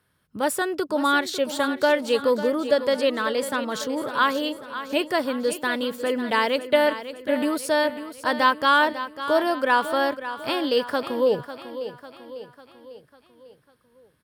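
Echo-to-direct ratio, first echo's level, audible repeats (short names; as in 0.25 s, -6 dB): -10.5 dB, -12.0 dB, 4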